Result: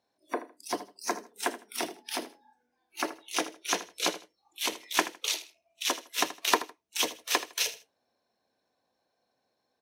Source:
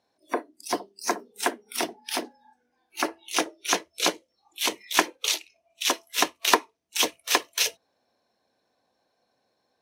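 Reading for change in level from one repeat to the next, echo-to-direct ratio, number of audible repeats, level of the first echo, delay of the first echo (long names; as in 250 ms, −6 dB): −13.0 dB, −14.5 dB, 2, −14.5 dB, 79 ms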